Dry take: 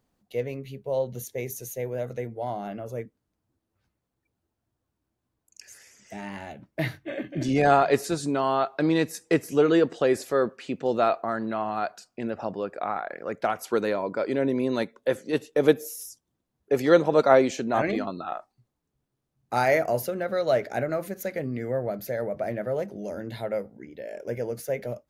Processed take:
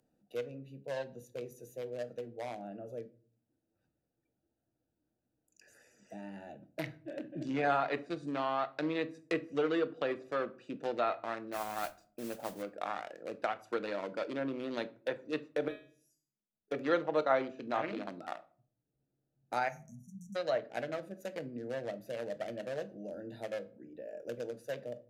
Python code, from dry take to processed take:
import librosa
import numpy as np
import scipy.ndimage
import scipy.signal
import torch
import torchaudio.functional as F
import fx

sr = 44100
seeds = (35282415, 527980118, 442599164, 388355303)

y = fx.wiener(x, sr, points=41)
y = fx.env_lowpass_down(y, sr, base_hz=2600.0, full_db=-20.5)
y = fx.riaa(y, sr, side='recording')
y = fx.notch(y, sr, hz=410.0, q=13.0)
y = fx.mod_noise(y, sr, seeds[0], snr_db=10, at=(11.52, 12.61), fade=0.02)
y = fx.comb_fb(y, sr, f0_hz=210.0, decay_s=0.41, harmonics='all', damping=0.0, mix_pct=90, at=(15.68, 16.72))
y = fx.high_shelf(y, sr, hz=3700.0, db=-9.5, at=(18.33, 19.62))
y = fx.spec_erase(y, sr, start_s=19.69, length_s=0.67, low_hz=250.0, high_hz=5600.0)
y = fx.room_shoebox(y, sr, seeds[1], volume_m3=270.0, walls='furnished', distance_m=0.49)
y = fx.band_squash(y, sr, depth_pct=40)
y = y * 10.0 ** (-6.0 / 20.0)